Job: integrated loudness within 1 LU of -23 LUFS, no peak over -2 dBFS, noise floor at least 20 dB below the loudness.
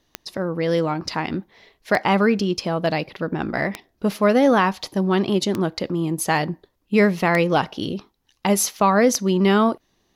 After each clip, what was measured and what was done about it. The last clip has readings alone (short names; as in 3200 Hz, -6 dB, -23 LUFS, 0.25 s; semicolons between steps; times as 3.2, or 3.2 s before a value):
clicks 6; loudness -21.0 LUFS; peak -6.5 dBFS; loudness target -23.0 LUFS
-> de-click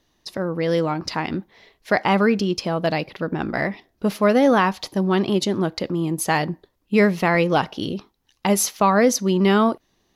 clicks 0; loudness -21.0 LUFS; peak -6.5 dBFS; loudness target -23.0 LUFS
-> gain -2 dB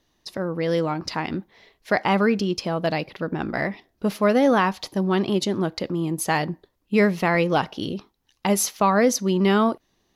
loudness -23.0 LUFS; peak -8.5 dBFS; noise floor -70 dBFS